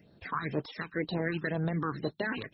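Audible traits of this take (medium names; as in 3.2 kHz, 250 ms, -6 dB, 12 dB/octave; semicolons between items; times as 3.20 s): phasing stages 8, 2 Hz, lowest notch 580–2200 Hz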